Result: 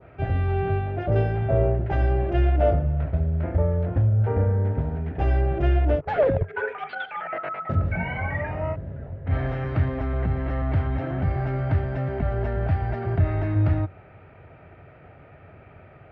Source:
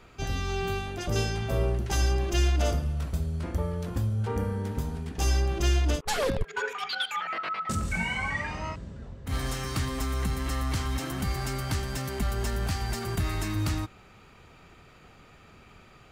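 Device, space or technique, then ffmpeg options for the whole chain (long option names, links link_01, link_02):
bass cabinet: -af "highpass=61,equalizer=frequency=92:width_type=q:width=4:gain=8,equalizer=frequency=140:width_type=q:width=4:gain=4,equalizer=frequency=210:width_type=q:width=4:gain=-7,equalizer=frequency=630:width_type=q:width=4:gain=9,equalizer=frequency=1100:width_type=q:width=4:gain=-9,lowpass=frequency=2100:width=0.5412,lowpass=frequency=2100:width=1.3066,adynamicequalizer=threshold=0.00447:dfrequency=2200:dqfactor=0.87:tfrequency=2200:tqfactor=0.87:attack=5:release=100:ratio=0.375:range=2:mode=cutabove:tftype=bell,volume=5dB"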